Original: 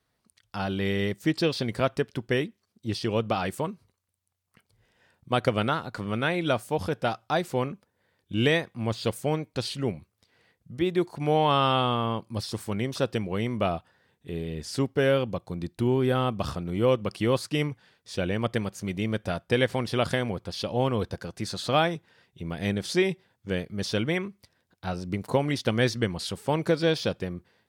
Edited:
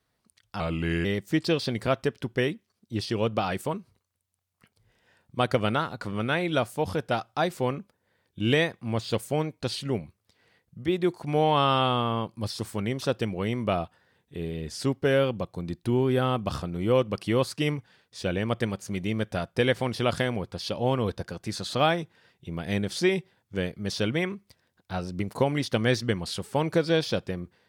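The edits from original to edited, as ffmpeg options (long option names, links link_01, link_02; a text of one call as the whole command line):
ffmpeg -i in.wav -filter_complex "[0:a]asplit=3[link_01][link_02][link_03];[link_01]atrim=end=0.604[link_04];[link_02]atrim=start=0.6:end=0.98,asetpts=PTS-STARTPTS,asetrate=37485,aresample=44100,atrim=end_sample=19715,asetpts=PTS-STARTPTS[link_05];[link_03]atrim=start=0.976[link_06];[link_04][link_05]acrossfade=duration=0.004:curve1=hsin:curve2=hsin[link_07];[link_07][link_06]acrossfade=duration=0.004:curve1=hsin:curve2=hsin" out.wav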